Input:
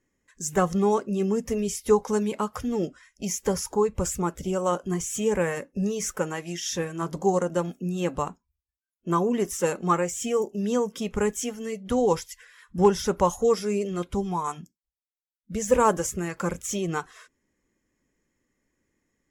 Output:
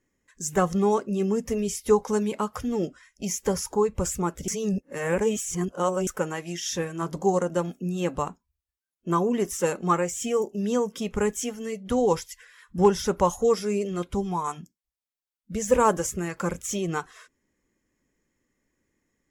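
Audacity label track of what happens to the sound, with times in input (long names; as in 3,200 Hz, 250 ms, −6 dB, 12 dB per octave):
4.480000	6.070000	reverse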